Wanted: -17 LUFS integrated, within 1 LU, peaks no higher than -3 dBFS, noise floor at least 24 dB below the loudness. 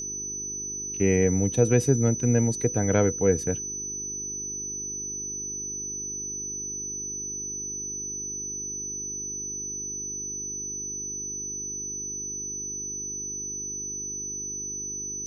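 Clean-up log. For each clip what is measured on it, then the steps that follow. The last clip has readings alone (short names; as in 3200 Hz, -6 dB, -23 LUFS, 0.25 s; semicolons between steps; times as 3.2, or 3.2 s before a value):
hum 50 Hz; harmonics up to 400 Hz; hum level -43 dBFS; steady tone 6000 Hz; tone level -31 dBFS; loudness -28.0 LUFS; peak -7.0 dBFS; loudness target -17.0 LUFS
-> de-hum 50 Hz, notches 8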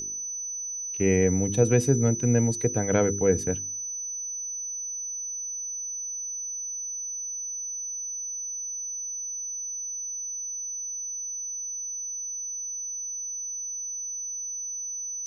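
hum none; steady tone 6000 Hz; tone level -31 dBFS
-> notch 6000 Hz, Q 30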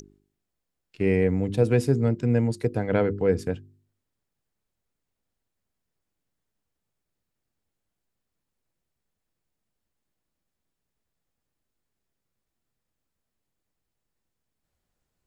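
steady tone none; loudness -24.0 LUFS; peak -7.5 dBFS; loudness target -17.0 LUFS
-> gain +7 dB; limiter -3 dBFS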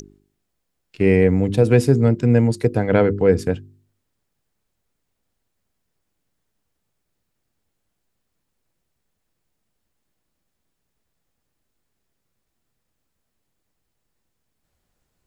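loudness -17.5 LUFS; peak -3.0 dBFS; noise floor -76 dBFS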